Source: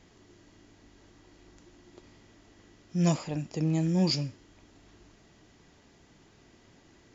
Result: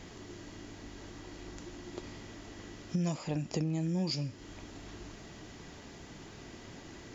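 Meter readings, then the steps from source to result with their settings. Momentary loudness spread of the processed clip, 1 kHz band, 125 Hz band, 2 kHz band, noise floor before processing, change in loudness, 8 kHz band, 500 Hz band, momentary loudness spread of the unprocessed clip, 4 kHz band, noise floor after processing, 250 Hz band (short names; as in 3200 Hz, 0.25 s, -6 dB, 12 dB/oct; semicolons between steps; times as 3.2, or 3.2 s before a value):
16 LU, -4.0 dB, -5.0 dB, 0.0 dB, -60 dBFS, -11.0 dB, n/a, -4.0 dB, 10 LU, -5.0 dB, -50 dBFS, -5.0 dB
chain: compressor 12:1, threshold -40 dBFS, peak gain reduction 19 dB; gain +10 dB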